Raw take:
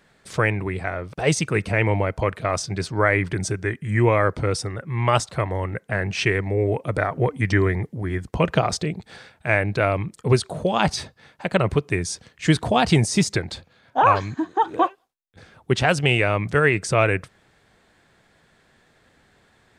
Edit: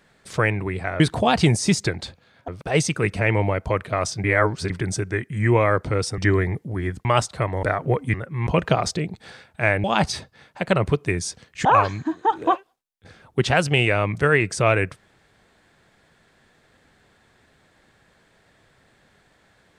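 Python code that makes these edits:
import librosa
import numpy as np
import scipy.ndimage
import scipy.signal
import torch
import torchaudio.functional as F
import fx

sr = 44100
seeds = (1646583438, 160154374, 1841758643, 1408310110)

y = fx.edit(x, sr, fx.reverse_span(start_s=2.76, length_s=0.46),
    fx.swap(start_s=4.7, length_s=0.33, other_s=7.46, other_length_s=0.87),
    fx.cut(start_s=5.61, length_s=1.34),
    fx.cut(start_s=9.7, length_s=0.98),
    fx.move(start_s=12.49, length_s=1.48, to_s=1.0), tone=tone)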